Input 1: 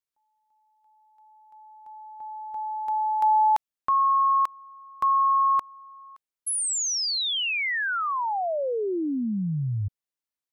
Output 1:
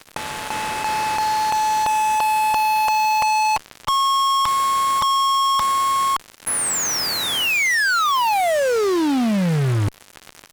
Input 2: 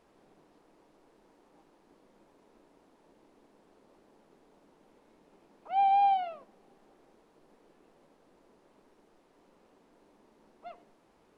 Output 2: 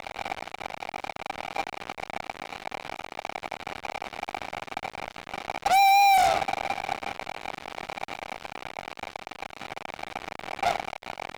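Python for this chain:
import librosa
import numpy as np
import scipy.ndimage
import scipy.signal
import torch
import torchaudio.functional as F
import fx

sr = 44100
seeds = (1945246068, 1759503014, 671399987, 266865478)

y = fx.bin_compress(x, sr, power=0.4)
y = fx.high_shelf_res(y, sr, hz=2500.0, db=-8.5, q=1.5)
y = fx.fuzz(y, sr, gain_db=38.0, gate_db=-38.0)
y = y * librosa.db_to_amplitude(-4.0)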